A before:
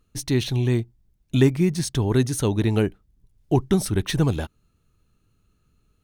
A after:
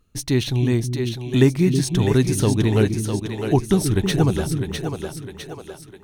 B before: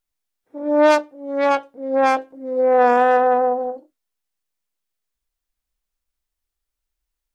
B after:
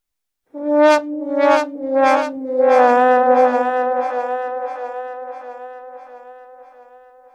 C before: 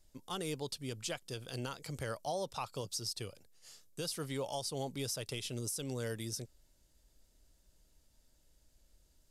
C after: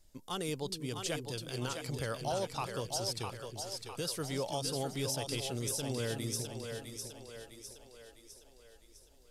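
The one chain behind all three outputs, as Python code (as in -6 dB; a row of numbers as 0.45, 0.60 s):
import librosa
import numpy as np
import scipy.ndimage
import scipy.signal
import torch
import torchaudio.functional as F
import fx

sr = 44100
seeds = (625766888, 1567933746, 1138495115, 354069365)

y = fx.echo_split(x, sr, split_hz=350.0, low_ms=321, high_ms=655, feedback_pct=52, wet_db=-5.5)
y = y * librosa.db_to_amplitude(2.0)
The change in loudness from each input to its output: +2.5, +2.0, +2.5 LU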